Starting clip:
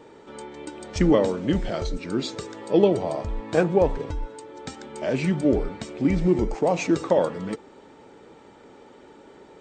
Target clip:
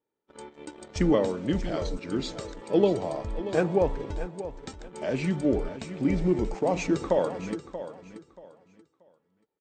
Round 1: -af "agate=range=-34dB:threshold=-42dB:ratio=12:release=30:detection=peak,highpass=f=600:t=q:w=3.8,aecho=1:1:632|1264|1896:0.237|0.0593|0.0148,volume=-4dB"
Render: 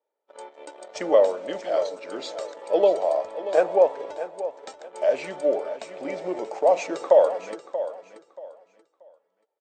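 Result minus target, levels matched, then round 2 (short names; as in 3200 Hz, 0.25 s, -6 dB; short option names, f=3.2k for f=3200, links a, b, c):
500 Hz band +2.5 dB
-af "agate=range=-34dB:threshold=-42dB:ratio=12:release=30:detection=peak,aecho=1:1:632|1264|1896:0.237|0.0593|0.0148,volume=-4dB"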